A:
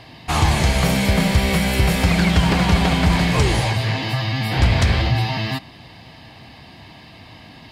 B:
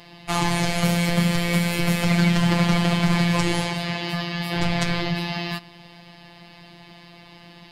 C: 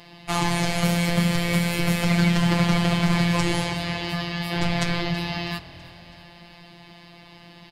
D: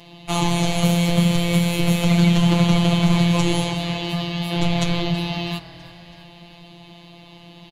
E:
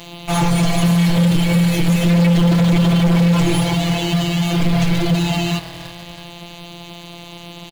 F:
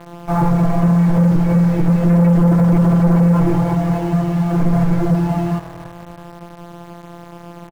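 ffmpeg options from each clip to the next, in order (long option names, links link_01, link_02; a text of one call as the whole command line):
ffmpeg -i in.wav -af "afftfilt=real='hypot(re,im)*cos(PI*b)':imag='0':win_size=1024:overlap=0.75" out.wav
ffmpeg -i in.wav -filter_complex "[0:a]asplit=5[link_01][link_02][link_03][link_04][link_05];[link_02]adelay=326,afreqshift=-40,volume=-19dB[link_06];[link_03]adelay=652,afreqshift=-80,volume=-24.4dB[link_07];[link_04]adelay=978,afreqshift=-120,volume=-29.7dB[link_08];[link_05]adelay=1304,afreqshift=-160,volume=-35.1dB[link_09];[link_01][link_06][link_07][link_08][link_09]amix=inputs=5:normalize=0,volume=-1dB" out.wav
ffmpeg -i in.wav -af "aecho=1:1:6.1:0.7" out.wav
ffmpeg -i in.wav -filter_complex "[0:a]asplit=2[link_01][link_02];[link_02]acrusher=bits=5:mix=0:aa=0.000001,volume=-5.5dB[link_03];[link_01][link_03]amix=inputs=2:normalize=0,volume=16dB,asoftclip=hard,volume=-16dB,volume=5dB" out.wav
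ffmpeg -i in.wav -filter_complex "[0:a]lowpass=frequency=1500:width=0.5412,lowpass=frequency=1500:width=1.3066,asplit=2[link_01][link_02];[link_02]acrusher=bits=4:mix=0:aa=0.000001,volume=-10dB[link_03];[link_01][link_03]amix=inputs=2:normalize=0,volume=-1dB" out.wav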